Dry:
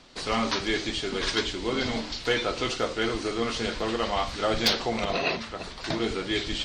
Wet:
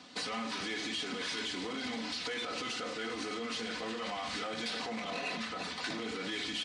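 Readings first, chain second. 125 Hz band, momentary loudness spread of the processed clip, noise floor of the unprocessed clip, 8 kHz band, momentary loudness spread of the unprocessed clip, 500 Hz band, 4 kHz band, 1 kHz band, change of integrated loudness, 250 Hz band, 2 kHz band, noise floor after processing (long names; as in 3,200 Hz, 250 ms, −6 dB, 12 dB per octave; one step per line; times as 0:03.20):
−15.0 dB, 2 LU, −40 dBFS, −6.5 dB, 5 LU, −12.5 dB, −7.5 dB, −9.0 dB, −9.0 dB, −9.5 dB, −7.0 dB, −41 dBFS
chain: brickwall limiter −25 dBFS, peak gain reduction 11 dB
hard clipping −32.5 dBFS, distortion −12 dB
high-pass filter 100 Hz 24 dB per octave
downsampling to 22,050 Hz
comb filter 4 ms, depth 63%
downward compressor, threshold −34 dBFS, peak gain reduction 5 dB
dynamic equaliser 2,100 Hz, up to +4 dB, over −50 dBFS, Q 0.85
notch filter 510 Hz, Q 12
level −1 dB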